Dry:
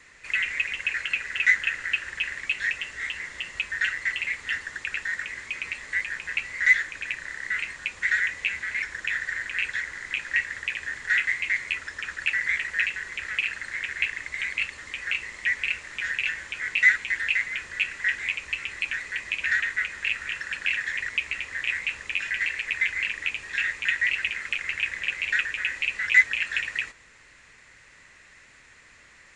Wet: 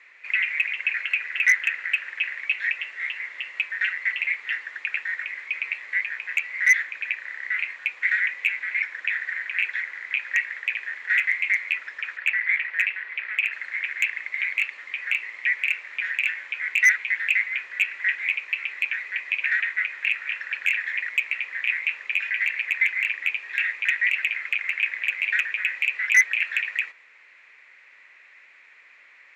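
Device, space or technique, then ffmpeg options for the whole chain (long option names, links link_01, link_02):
megaphone: -filter_complex "[0:a]asettb=1/sr,asplit=3[link_01][link_02][link_03];[link_01]atrim=end=12.174[link_04];[link_02]atrim=start=12.17:end=13.52,asetpts=PTS-STARTPTS,afade=type=in:duration=0.004:curve=qsin,afade=type=out:start_time=1.346:duration=0.004:curve=qsin,acrossover=split=270 4600:gain=0.2 1 0.0631[link_05][link_06][link_07];[link_05][link_06][link_07]amix=inputs=3:normalize=0[link_08];[link_03]atrim=start=13.516[link_09];[link_04][link_08]acrossfade=duration=0.004:curve1=hsin:curve2=qsin[link_10];[link_10][link_09]acrossfade=duration=0.004:curve1=qsin:curve2=hsin,highpass=550,lowpass=3300,equalizer=frequency=2300:width_type=o:width=0.43:gain=10,asoftclip=type=hard:threshold=-8.5dB,volume=-2.5dB"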